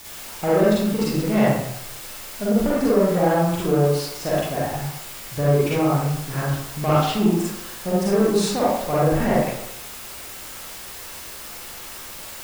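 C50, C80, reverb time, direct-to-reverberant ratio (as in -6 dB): -3.0 dB, 2.0 dB, 0.80 s, -8.0 dB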